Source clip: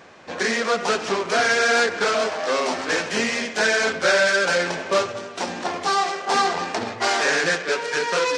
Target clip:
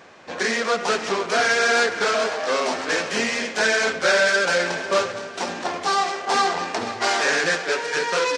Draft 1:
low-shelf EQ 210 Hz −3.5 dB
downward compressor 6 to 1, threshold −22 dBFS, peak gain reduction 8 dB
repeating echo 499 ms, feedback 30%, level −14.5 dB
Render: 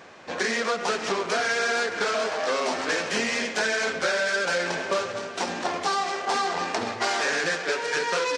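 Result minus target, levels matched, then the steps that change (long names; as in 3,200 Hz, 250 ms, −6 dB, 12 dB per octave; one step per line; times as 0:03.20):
downward compressor: peak gain reduction +8 dB
remove: downward compressor 6 to 1, threshold −22 dBFS, peak gain reduction 8 dB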